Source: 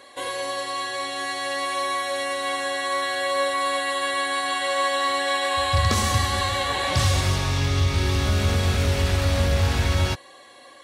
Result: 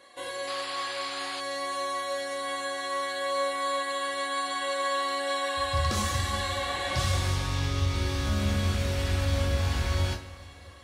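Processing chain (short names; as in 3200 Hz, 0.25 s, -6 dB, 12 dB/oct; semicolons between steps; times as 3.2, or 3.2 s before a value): two-slope reverb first 0.33 s, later 3.9 s, from -21 dB, DRR 1 dB; painted sound noise, 0.47–1.41, 670–5100 Hz -30 dBFS; gain -9 dB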